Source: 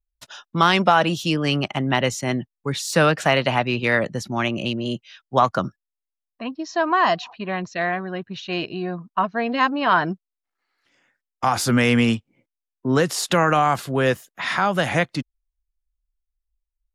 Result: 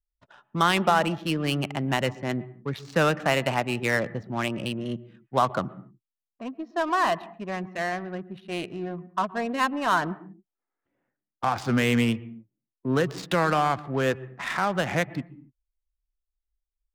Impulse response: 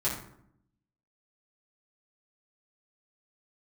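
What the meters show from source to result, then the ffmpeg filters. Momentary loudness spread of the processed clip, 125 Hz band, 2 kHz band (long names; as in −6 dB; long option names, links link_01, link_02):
12 LU, −4.5 dB, −5.5 dB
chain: -filter_complex "[0:a]adynamicsmooth=sensitivity=2.5:basefreq=880,asplit=2[link_01][link_02];[link_02]highpass=frequency=140:width=0.5412,highpass=frequency=140:width=1.3066,equalizer=frequency=540:width_type=q:width=4:gain=-8,equalizer=frequency=1000:width_type=q:width=4:gain=-6,equalizer=frequency=1500:width_type=q:width=4:gain=-10,equalizer=frequency=2200:width_type=q:width=4:gain=-4,lowpass=frequency=2400:width=0.5412,lowpass=frequency=2400:width=1.3066[link_03];[1:a]atrim=start_sample=2205,afade=type=out:start_time=0.23:duration=0.01,atrim=end_sample=10584,adelay=114[link_04];[link_03][link_04]afir=irnorm=-1:irlink=0,volume=-22.5dB[link_05];[link_01][link_05]amix=inputs=2:normalize=0,volume=-5dB"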